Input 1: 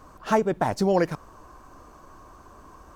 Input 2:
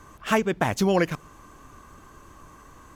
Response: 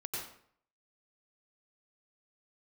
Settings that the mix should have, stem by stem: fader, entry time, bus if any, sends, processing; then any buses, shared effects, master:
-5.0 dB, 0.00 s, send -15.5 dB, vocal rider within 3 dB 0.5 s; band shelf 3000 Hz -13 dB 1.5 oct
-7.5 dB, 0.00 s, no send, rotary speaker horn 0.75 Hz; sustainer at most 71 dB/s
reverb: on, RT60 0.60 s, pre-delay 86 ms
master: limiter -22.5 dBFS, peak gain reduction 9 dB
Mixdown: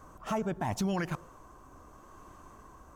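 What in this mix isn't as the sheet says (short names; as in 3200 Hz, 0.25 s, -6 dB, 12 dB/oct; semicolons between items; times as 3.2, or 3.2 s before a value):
stem 1: send -15.5 dB -> -23 dB; stem 2: missing sustainer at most 71 dB/s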